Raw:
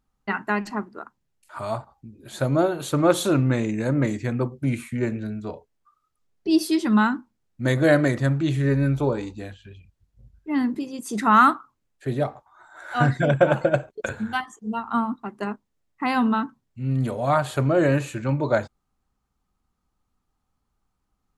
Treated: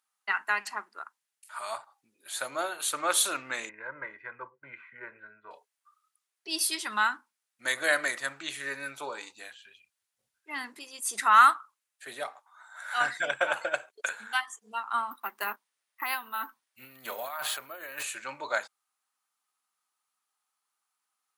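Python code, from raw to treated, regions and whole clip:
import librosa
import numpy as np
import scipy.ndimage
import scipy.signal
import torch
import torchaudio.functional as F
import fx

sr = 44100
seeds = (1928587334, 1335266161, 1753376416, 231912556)

y = fx.chain(x, sr, fx.lowpass(hz=1700.0, slope=24),
    fx.peak_eq(hz=510.0, db=-8.0, octaves=1.6),
    fx.comb(ms=2.0, depth=0.66), at=(3.69, 5.51))
y = fx.chain(y, sr, fx.resample_bad(factor=3, down='filtered', up='hold'),
    fx.over_compress(threshold_db=-27.0, ratio=-1.0), at=(15.11, 18.03))
y = scipy.signal.sosfilt(scipy.signal.butter(2, 1300.0, 'highpass', fs=sr, output='sos'), y)
y = fx.peak_eq(y, sr, hz=9700.0, db=8.5, octaves=0.42)
y = y * librosa.db_to_amplitude(1.5)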